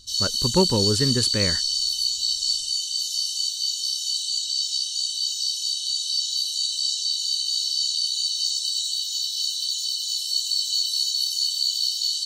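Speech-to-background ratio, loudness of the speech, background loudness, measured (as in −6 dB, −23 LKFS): −2.5 dB, −24.5 LKFS, −22.0 LKFS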